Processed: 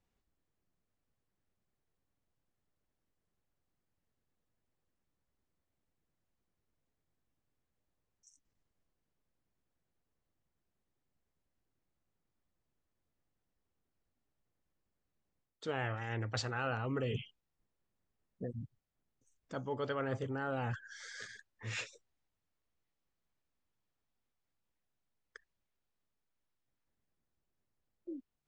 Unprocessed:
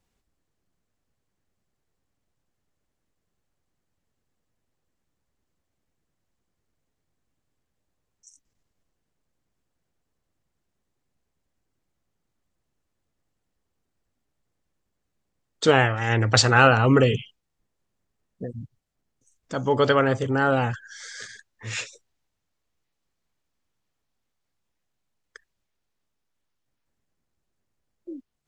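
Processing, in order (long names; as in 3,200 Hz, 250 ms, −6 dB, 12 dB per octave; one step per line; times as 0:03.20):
low-pass filter 3,800 Hz 6 dB per octave
reversed playback
downward compressor 5 to 1, threshold −28 dBFS, peak gain reduction 15.5 dB
reversed playback
level −6.5 dB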